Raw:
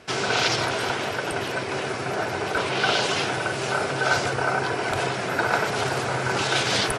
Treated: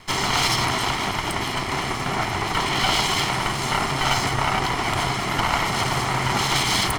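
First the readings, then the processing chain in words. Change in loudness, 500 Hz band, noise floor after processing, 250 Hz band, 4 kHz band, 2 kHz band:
+2.0 dB, -4.0 dB, -27 dBFS, +2.5 dB, +4.0 dB, 0.0 dB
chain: comb filter that takes the minimum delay 0.96 ms; in parallel at +1.5 dB: peak limiter -17 dBFS, peak gain reduction 9.5 dB; on the sum: trim -2 dB

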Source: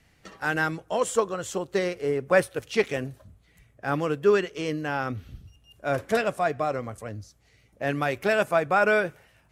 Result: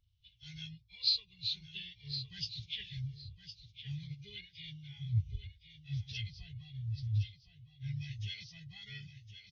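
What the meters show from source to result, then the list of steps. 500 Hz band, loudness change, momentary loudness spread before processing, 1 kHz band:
under -40 dB, -13.5 dB, 11 LU, under -40 dB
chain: knee-point frequency compression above 1.3 kHz 1.5:1; elliptic band-stop 110–3000 Hz, stop band 40 dB; bass shelf 120 Hz -3.5 dB; on a send: feedback delay 1062 ms, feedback 33%, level -7 dB; on the sum: spectral contrast expander 1.5:1; trim +6 dB

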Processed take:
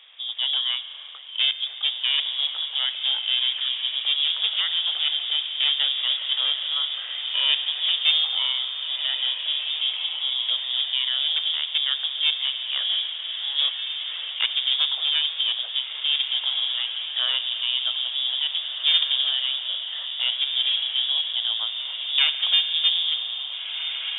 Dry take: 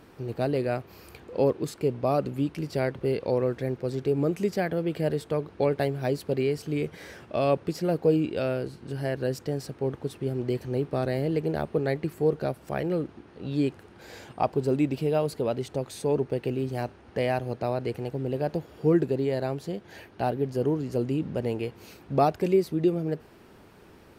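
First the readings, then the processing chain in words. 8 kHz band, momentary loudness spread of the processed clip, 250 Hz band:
under -30 dB, 7 LU, under -40 dB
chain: one-sided wavefolder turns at -24 dBFS; on a send: echo that smears into a reverb 1806 ms, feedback 47%, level -6 dB; on the sum: spring tank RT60 3.6 s, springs 35 ms, chirp 35 ms, DRR 11.5 dB; frequency inversion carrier 3.6 kHz; steep high-pass 470 Hz 36 dB/octave; trim +2 dB; MP3 40 kbps 12 kHz

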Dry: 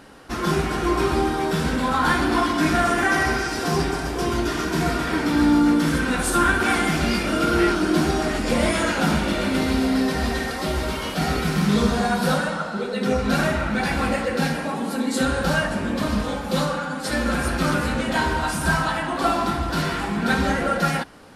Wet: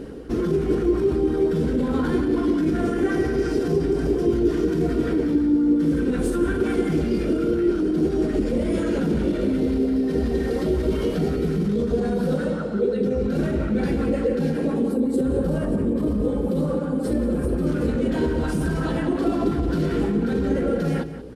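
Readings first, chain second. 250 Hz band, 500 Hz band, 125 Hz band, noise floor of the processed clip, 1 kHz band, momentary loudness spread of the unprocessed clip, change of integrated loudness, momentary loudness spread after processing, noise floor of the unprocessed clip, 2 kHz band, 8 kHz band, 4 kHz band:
+1.5 dB, +2.5 dB, 0.0 dB, -26 dBFS, -12.5 dB, 6 LU, -0.5 dB, 3 LU, -29 dBFS, -13.0 dB, under -10 dB, -13.5 dB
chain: in parallel at -4 dB: saturation -21 dBFS, distortion -11 dB; on the sum: resonant low shelf 570 Hz +13.5 dB, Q 1.5; small resonant body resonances 460/3100 Hz, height 7 dB; level rider; peak limiter -10 dBFS, peak gain reduction 9.5 dB; hum 60 Hz, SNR 23 dB; echo from a far wall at 31 m, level -12 dB; time-frequency box 14.91–17.67 s, 1.3–7.5 kHz -7 dB; sweeping bell 5.6 Hz 350–1700 Hz +6 dB; trim -6.5 dB

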